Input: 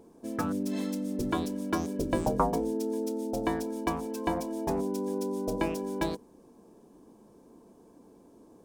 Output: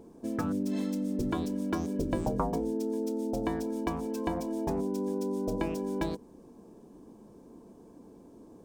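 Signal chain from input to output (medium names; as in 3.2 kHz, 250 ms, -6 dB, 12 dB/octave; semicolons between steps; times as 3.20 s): peaking EQ 11 kHz -7 dB 0.2 oct; compression 2:1, threshold -34 dBFS, peak gain reduction 7 dB; bass shelf 370 Hz +6 dB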